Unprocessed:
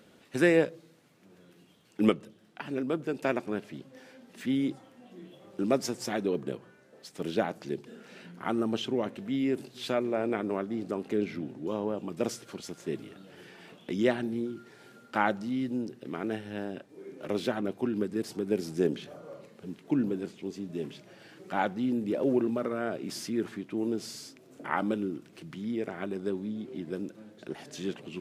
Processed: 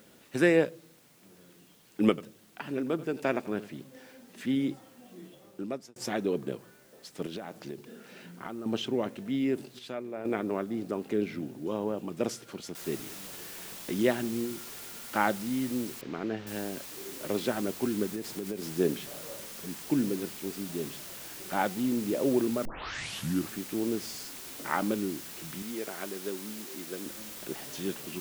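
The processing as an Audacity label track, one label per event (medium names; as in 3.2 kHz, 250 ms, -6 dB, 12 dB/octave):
2.090000	4.740000	delay 86 ms -16.5 dB
5.240000	5.960000	fade out linear
7.260000	8.660000	compression 10:1, threshold -34 dBFS
9.790000	10.250000	gain -8.5 dB
12.750000	12.750000	noise floor step -63 dB -44 dB
16.010000	16.470000	distance through air 210 m
18.100000	18.720000	compression 10:1, threshold -30 dBFS
22.650000	22.650000	tape start 0.89 s
25.620000	27.060000	high-pass 460 Hz 6 dB/octave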